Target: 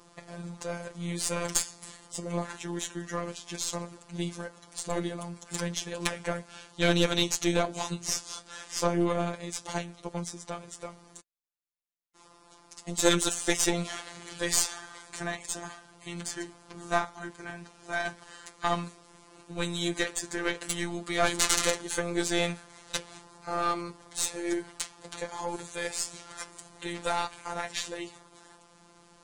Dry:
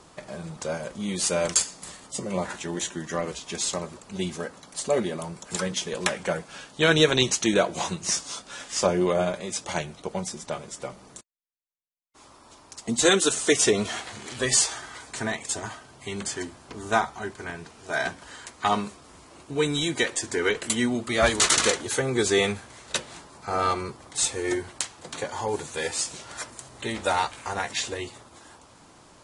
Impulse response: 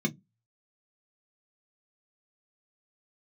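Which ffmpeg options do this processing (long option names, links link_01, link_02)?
-af "aeval=exprs='0.708*(cos(1*acos(clip(val(0)/0.708,-1,1)))-cos(1*PI/2))+0.0631*(cos(6*acos(clip(val(0)/0.708,-1,1)))-cos(6*PI/2))':channel_layout=same,afftfilt=real='hypot(re,im)*cos(PI*b)':imag='0':win_size=1024:overlap=0.75,volume=-2dB"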